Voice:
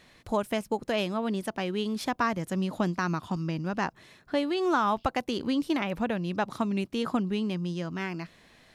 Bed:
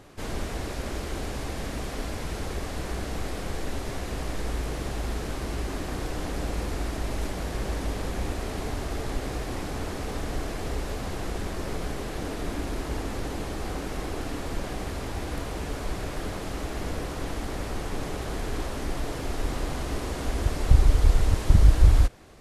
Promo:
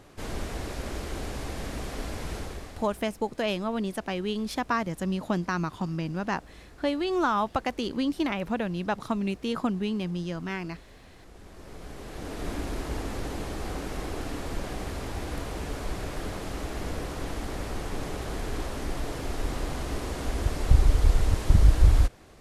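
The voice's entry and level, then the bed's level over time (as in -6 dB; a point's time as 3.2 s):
2.50 s, 0.0 dB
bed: 2.36 s -2 dB
3.16 s -20.5 dB
11.18 s -20.5 dB
12.48 s -1.5 dB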